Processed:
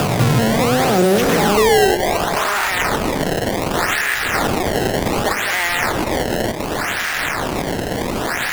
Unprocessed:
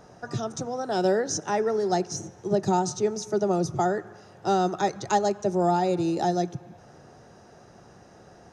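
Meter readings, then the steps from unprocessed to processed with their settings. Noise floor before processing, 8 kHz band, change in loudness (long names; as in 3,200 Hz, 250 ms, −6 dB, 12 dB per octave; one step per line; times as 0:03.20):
−52 dBFS, +10.5 dB, +9.0 dB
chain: spectrum averaged block by block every 200 ms
in parallel at −10.5 dB: fuzz pedal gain 55 dB, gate −56 dBFS
on the sum: high-pass filter sweep 110 Hz → 1,900 Hz, 0:01.09–0:02.76
sample-and-hold swept by an LFO 21×, swing 160% 0.67 Hz
echo through a band-pass that steps 107 ms, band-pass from 260 Hz, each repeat 1.4 octaves, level −10 dB
multiband upward and downward compressor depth 70%
level +6 dB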